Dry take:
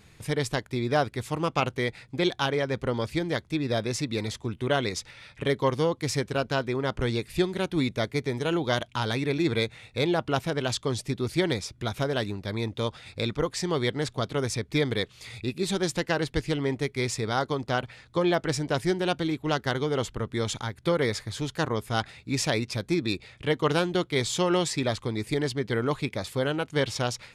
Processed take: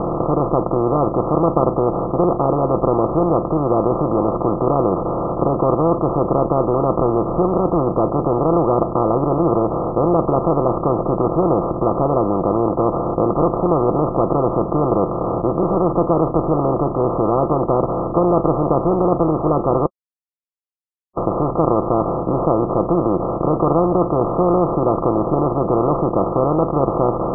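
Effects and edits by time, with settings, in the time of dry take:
0:19.86–0:21.17: silence
whole clip: compressor on every frequency bin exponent 0.2; Chebyshev low-pass filter 1,300 Hz, order 10; comb filter 5.9 ms, depth 36%; level +1 dB

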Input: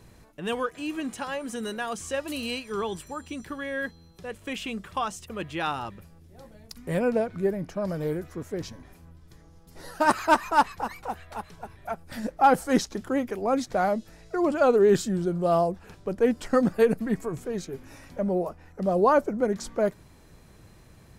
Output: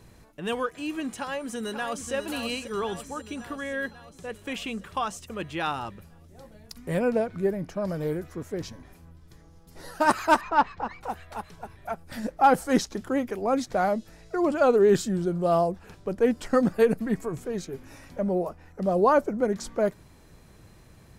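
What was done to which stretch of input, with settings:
0:01.17–0:02.13: delay throw 540 ms, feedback 65%, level −8 dB
0:10.41–0:11.01: high-frequency loss of the air 180 metres

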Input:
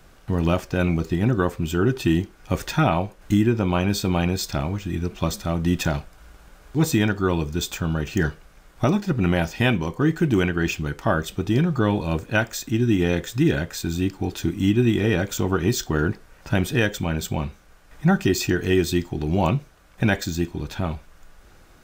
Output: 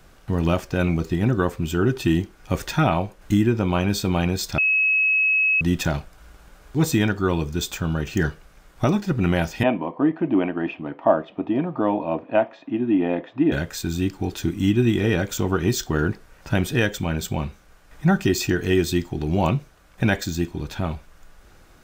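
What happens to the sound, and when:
0:04.58–0:05.61: beep over 2,570 Hz −16 dBFS
0:09.63–0:13.52: loudspeaker in its box 280–2,400 Hz, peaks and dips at 280 Hz +9 dB, 410 Hz −6 dB, 650 Hz +10 dB, 940 Hz +4 dB, 1,500 Hz −10 dB, 2,100 Hz −5 dB

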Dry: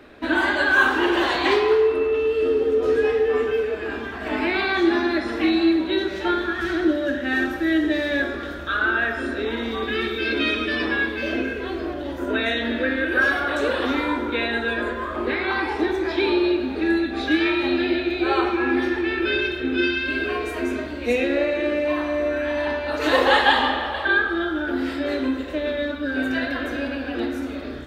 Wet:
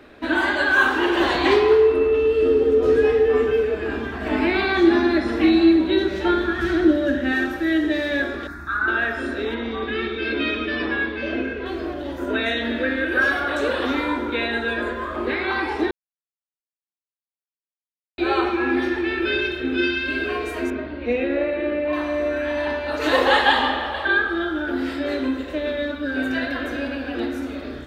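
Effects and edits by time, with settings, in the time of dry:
0:01.20–0:07.32: low-shelf EQ 340 Hz +7.5 dB
0:08.47–0:08.88: phaser with its sweep stopped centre 1,300 Hz, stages 4
0:09.54–0:11.66: high-frequency loss of the air 150 metres
0:15.91–0:18.18: silence
0:20.70–0:21.93: high-frequency loss of the air 300 metres

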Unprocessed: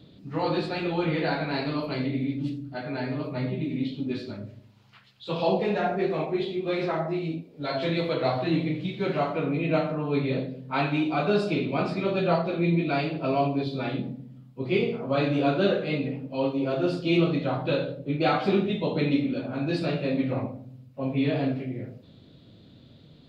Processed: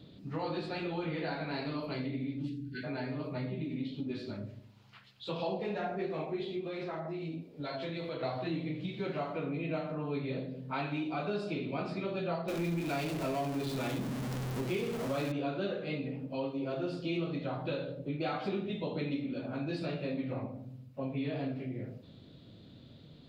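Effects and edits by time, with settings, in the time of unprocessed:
0:02.48–0:02.84: time-frequency box erased 480–1,400 Hz
0:06.67–0:08.23: downward compressor 2.5 to 1, threshold −33 dBFS
0:12.48–0:15.32: converter with a step at zero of −27 dBFS
whole clip: downward compressor 2.5 to 1, threshold −34 dBFS; level −2 dB

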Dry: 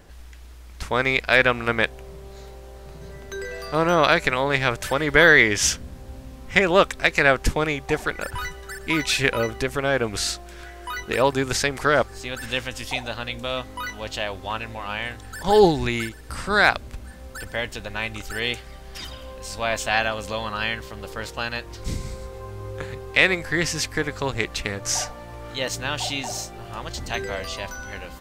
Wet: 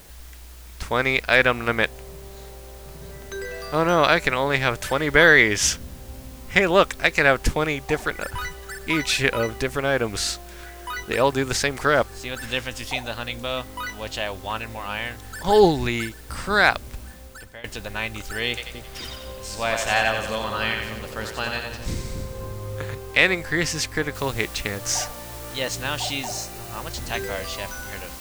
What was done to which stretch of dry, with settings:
0:17.04–0:17.64: fade out, to −18.5 dB
0:18.48–0:22.95: echo with a time of its own for lows and highs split 480 Hz, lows 260 ms, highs 89 ms, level −5 dB
0:24.15: noise floor change −50 dB −41 dB
0:26.26–0:26.93: notch filter 3,300 Hz

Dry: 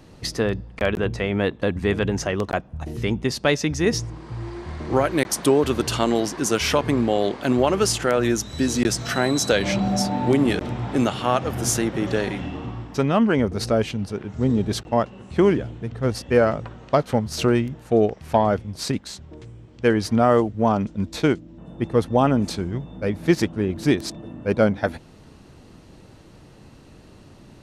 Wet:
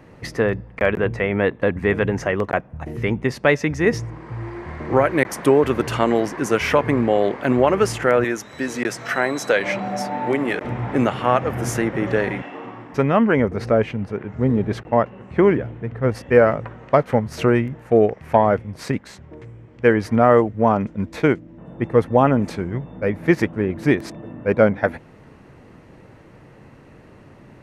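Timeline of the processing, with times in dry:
0:08.24–0:10.65: high-pass filter 460 Hz 6 dB per octave
0:12.41–0:12.92: high-pass filter 510 Hz → 180 Hz
0:13.56–0:16.12: high-shelf EQ 6,300 Hz −11 dB
whole clip: octave-band graphic EQ 125/250/500/1,000/2,000/4,000/8,000 Hz +6/+3/+7/+5/+11/−6/−3 dB; level −4.5 dB

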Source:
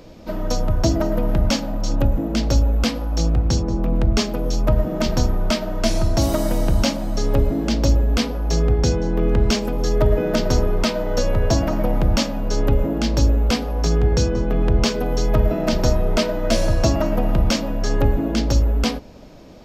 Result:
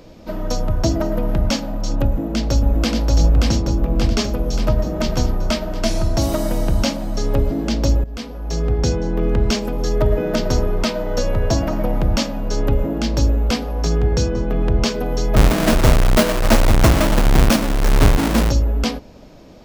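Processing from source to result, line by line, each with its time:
0:02.04–0:02.99: delay throw 580 ms, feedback 65%, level −2 dB
0:08.04–0:08.84: fade in linear, from −15.5 dB
0:15.36–0:18.50: each half-wave held at its own peak

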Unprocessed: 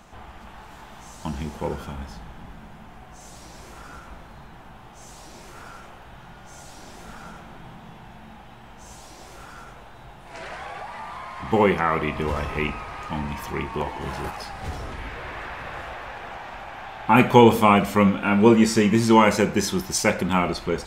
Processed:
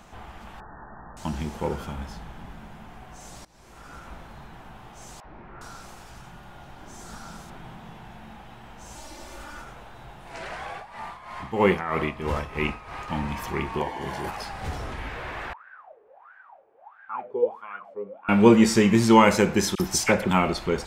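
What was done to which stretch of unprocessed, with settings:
0:00.60–0:01.17: linear-phase brick-wall low-pass 1,900 Hz
0:03.45–0:04.10: fade in, from −21.5 dB
0:05.20–0:07.50: three-band delay without the direct sound mids, lows, highs 40/410 ms, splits 520/2,200 Hz
0:08.95–0:09.62: comb filter 3.4 ms, depth 67%
0:10.72–0:13.08: amplitude tremolo 3.1 Hz, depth 70%
0:13.79–0:14.28: notch comb filter 1,300 Hz
0:15.53–0:18.29: LFO wah 1.5 Hz 420–1,600 Hz, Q 19
0:19.75–0:20.31: all-pass dispersion lows, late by 47 ms, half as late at 1,700 Hz

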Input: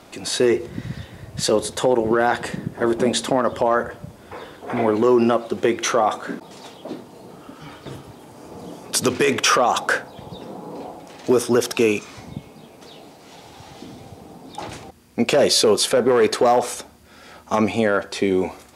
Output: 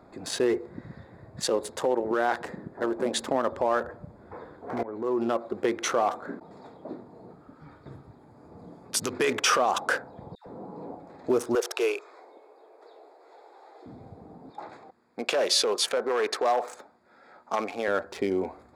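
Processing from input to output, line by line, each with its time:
0:00.58–0:03.18: low-shelf EQ 130 Hz −10 dB
0:04.83–0:05.64: fade in equal-power, from −17 dB
0:07.33–0:09.13: parametric band 510 Hz −6 dB 2.9 octaves
0:10.35–0:10.95: all-pass dispersion lows, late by 112 ms, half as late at 1,100 Hz
0:11.55–0:13.86: Butterworth high-pass 360 Hz 48 dB per octave
0:14.50–0:17.88: meter weighting curve A
whole clip: adaptive Wiener filter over 15 samples; dynamic equaliser 140 Hz, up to −7 dB, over −36 dBFS, Q 0.84; level −5.5 dB

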